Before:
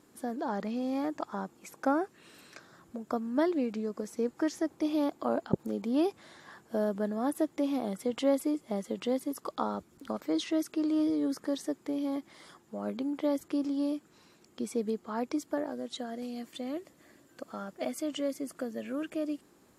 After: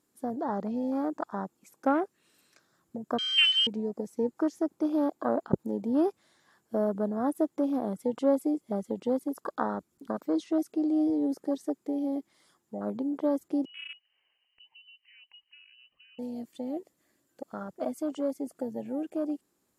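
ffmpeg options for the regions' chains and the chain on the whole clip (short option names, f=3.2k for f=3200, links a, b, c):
-filter_complex "[0:a]asettb=1/sr,asplit=3[a][b][c];[a]atrim=end=3.184[d];[b]atrim=start=3.18:end=3.67,asetpts=PTS-STARTPTS,afade=t=in:d=0.004:c=qsin,afade=t=out:st=0.486:d=0.004:c=qsin,adynamicsmooth=sensitivity=2.5:basefreq=1.3k,lowpass=f=2.9k:t=q:w=0.5098,lowpass=f=2.9k:t=q:w=0.6013,lowpass=f=2.9k:t=q:w=0.9,lowpass=f=2.9k:t=q:w=2.563,afreqshift=-3400[e];[c]atrim=start=3.666[f];[d][e]acrossfade=d=0.004:c1=hsin:c2=qsin[g];[g][f]acrossfade=d=0.004:c1=qsin:c2=hsin,asettb=1/sr,asplit=3[h][i][j];[h]atrim=end=13.654[k];[i]atrim=start=13.65:end=16.19,asetpts=PTS-STARTPTS,afade=t=in:d=0.004:c=qsin,afade=t=out:st=2.536:d=0.004:c=qsin,bandreject=f=1.8k:w=9.4,acompressor=threshold=-48dB:ratio=2:attack=3.2:release=140:knee=1:detection=peak,lowpass=f=2.7k:t=q:w=0.5098,lowpass=f=2.7k:t=q:w=0.6013,lowpass=f=2.7k:t=q:w=0.9,lowpass=f=2.7k:t=q:w=2.563,afreqshift=-3200[l];[j]atrim=start=16.186[m];[k][l]acrossfade=d=0.004:c1=hsin:c2=qsin[n];[n][m]acrossfade=d=0.004:c1=qsin:c2=hsin,aemphasis=mode=production:type=cd,afwtdn=0.0141,volume=2.5dB"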